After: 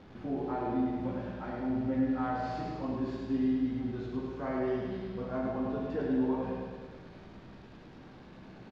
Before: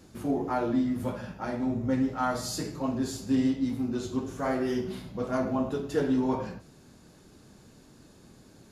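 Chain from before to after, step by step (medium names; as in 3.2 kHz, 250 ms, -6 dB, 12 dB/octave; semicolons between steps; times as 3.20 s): one-bit delta coder 64 kbps, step -41 dBFS; treble shelf 9.6 kHz -10.5 dB; in parallel at -3 dB: peak limiter -25.5 dBFS, peak gain reduction 10 dB; on the sum: distance through air 280 m; feedback comb 190 Hz, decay 1.2 s, mix 70%; feedback delay 104 ms, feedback 60%, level -4 dB; on a send at -5 dB: reverberation RT60 1.2 s, pre-delay 15 ms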